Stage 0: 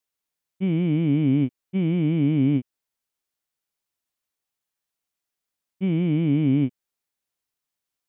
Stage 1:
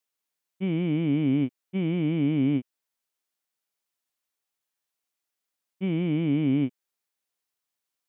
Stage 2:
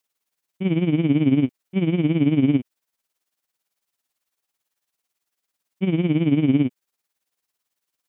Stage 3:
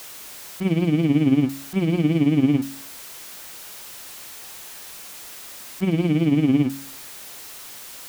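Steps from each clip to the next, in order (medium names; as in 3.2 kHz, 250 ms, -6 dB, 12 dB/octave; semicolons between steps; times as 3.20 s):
bass shelf 170 Hz -10 dB
tremolo 18 Hz, depth 68%; trim +8.5 dB
jump at every zero crossing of -32.5 dBFS; de-hum 45.76 Hz, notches 7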